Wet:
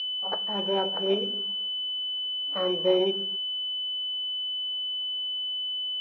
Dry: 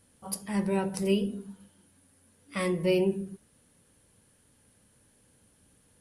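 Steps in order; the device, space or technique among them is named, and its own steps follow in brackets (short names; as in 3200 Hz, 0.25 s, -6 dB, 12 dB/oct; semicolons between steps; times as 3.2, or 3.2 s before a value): toy sound module (decimation joined by straight lines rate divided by 8×; pulse-width modulation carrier 3000 Hz; speaker cabinet 530–4800 Hz, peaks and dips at 1100 Hz -5 dB, 2100 Hz -7 dB, 4200 Hz +4 dB); gain +8.5 dB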